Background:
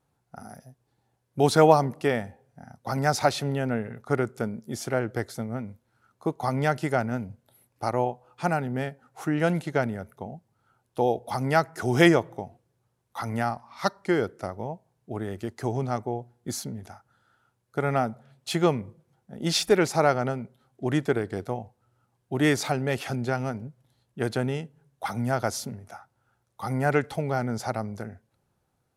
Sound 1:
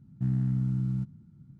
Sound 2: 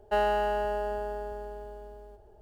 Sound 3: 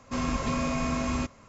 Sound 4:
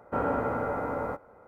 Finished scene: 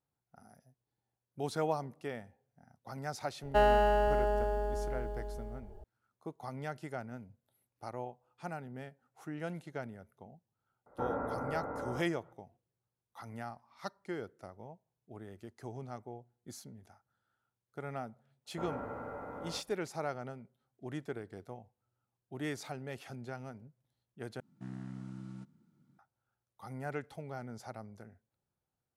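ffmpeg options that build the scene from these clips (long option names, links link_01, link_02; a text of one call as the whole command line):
ffmpeg -i bed.wav -i cue0.wav -i cue1.wav -i cue2.wav -i cue3.wav -filter_complex "[4:a]asplit=2[link_01][link_02];[0:a]volume=-16dB[link_03];[2:a]lowshelf=frequency=210:gain=8[link_04];[link_01]lowpass=frequency=1900:width=0.5412,lowpass=frequency=1900:width=1.3066[link_05];[1:a]highpass=400[link_06];[link_03]asplit=2[link_07][link_08];[link_07]atrim=end=24.404[link_09];[link_06]atrim=end=1.59,asetpts=PTS-STARTPTS,volume=-0.5dB[link_10];[link_08]atrim=start=25.986[link_11];[link_04]atrim=end=2.41,asetpts=PTS-STARTPTS,volume=-0.5dB,afade=type=in:duration=0.004:curve=hsin,afade=type=out:start_time=2.406:duration=0.004:curve=hsin,adelay=3430[link_12];[link_05]atrim=end=1.47,asetpts=PTS-STARTPTS,volume=-8.5dB,afade=type=in:duration=0.004:curve=hsin,afade=type=out:start_time=1.466:duration=0.004:curve=hsin,adelay=10860[link_13];[link_02]atrim=end=1.47,asetpts=PTS-STARTPTS,volume=-13dB,afade=type=in:duration=0.05,afade=type=out:start_time=1.42:duration=0.05,adelay=18450[link_14];[link_09][link_10]acrossfade=duration=0.004:curve1=hsin:curve2=hsin[link_15];[link_15][link_11]acrossfade=duration=0.004:curve1=hsin:curve2=hsin[link_16];[link_16][link_12][link_13][link_14]amix=inputs=4:normalize=0" out.wav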